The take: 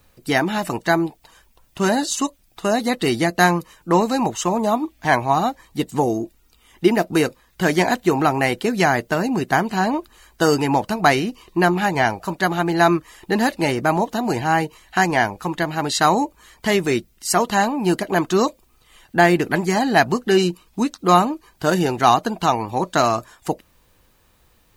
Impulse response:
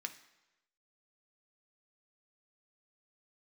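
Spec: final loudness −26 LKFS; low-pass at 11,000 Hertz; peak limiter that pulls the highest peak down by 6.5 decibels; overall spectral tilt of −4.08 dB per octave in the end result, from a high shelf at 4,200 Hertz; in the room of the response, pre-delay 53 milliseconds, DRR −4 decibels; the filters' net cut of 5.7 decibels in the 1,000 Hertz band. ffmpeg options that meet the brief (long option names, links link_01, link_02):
-filter_complex "[0:a]lowpass=11000,equalizer=frequency=1000:width_type=o:gain=-8.5,highshelf=frequency=4200:gain=3.5,alimiter=limit=-10.5dB:level=0:latency=1,asplit=2[link_01][link_02];[1:a]atrim=start_sample=2205,adelay=53[link_03];[link_02][link_03]afir=irnorm=-1:irlink=0,volume=5dB[link_04];[link_01][link_04]amix=inputs=2:normalize=0,volume=-6.5dB"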